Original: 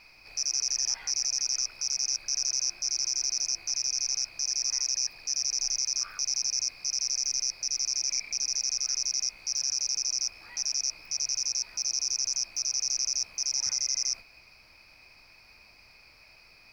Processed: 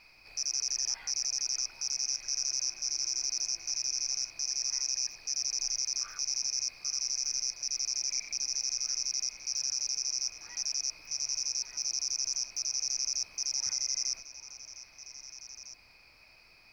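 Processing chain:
echo through a band-pass that steps 401 ms, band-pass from 340 Hz, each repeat 1.4 octaves, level −5.5 dB
level −3.5 dB

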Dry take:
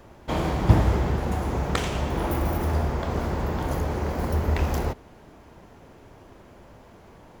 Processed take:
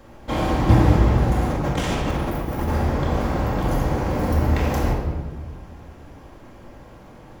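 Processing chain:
0:01.49–0:02.68: compressor whose output falls as the input rises −28 dBFS, ratio −0.5
rectangular room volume 1,200 cubic metres, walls mixed, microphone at 2.2 metres

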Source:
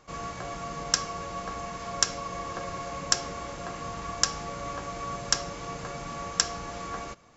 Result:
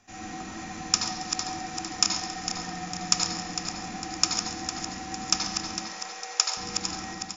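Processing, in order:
feedback delay that plays each chunk backwards 227 ms, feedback 69%, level −7 dB
frequency shifter −370 Hz
0:05.77–0:06.57: Butterworth high-pass 400 Hz 72 dB per octave
repeating echo 137 ms, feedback 47%, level −15 dB
convolution reverb RT60 1.0 s, pre-delay 73 ms, DRR 2 dB

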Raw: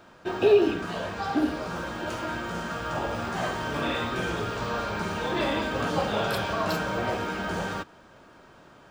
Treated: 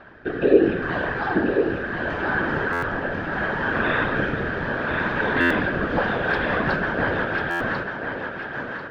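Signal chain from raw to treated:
parametric band 1,700 Hz +13 dB 0.31 octaves
in parallel at −1 dB: downward compressor, threshold −34 dBFS, peak gain reduction 18.5 dB
on the sum: rotating-speaker cabinet horn 0.7 Hz, later 6 Hz, at 0:05.63
random phases in short frames
high-frequency loss of the air 320 metres
feedback echo with a high-pass in the loop 1,043 ms, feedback 29%, high-pass 200 Hz, level −5 dB
on a send at −14 dB: convolution reverb RT60 5.7 s, pre-delay 33 ms
on the sum: buffer that repeats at 0:02.72/0:05.40/0:07.50, samples 512, times 8
level +3.5 dB

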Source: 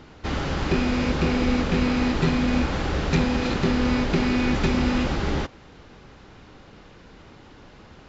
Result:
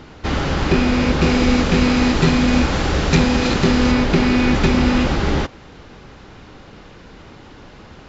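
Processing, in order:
0:01.22–0:03.92: high-shelf EQ 6,100 Hz +9 dB
level +6.5 dB

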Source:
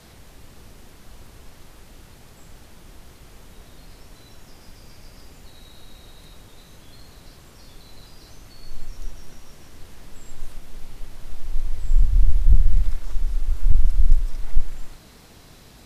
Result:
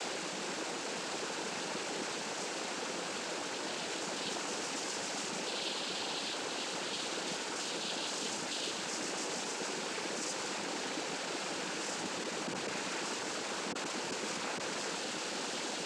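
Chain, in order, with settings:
Butterworth high-pass 270 Hz 36 dB per octave
leveller curve on the samples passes 5
cochlear-implant simulation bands 8

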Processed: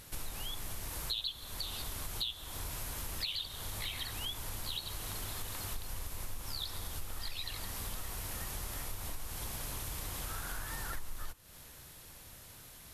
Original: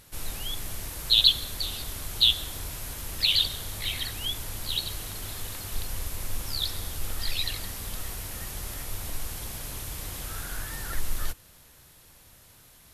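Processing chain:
dynamic equaliser 1,000 Hz, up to +6 dB, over −52 dBFS, Q 1.6
downward compressor 6 to 1, threshold −38 dBFS, peak gain reduction 22.5 dB
level +1.5 dB

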